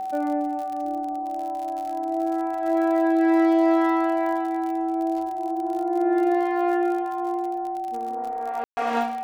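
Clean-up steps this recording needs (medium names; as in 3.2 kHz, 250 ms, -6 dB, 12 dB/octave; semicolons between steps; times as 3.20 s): de-click; band-stop 760 Hz, Q 30; room tone fill 8.64–8.77 s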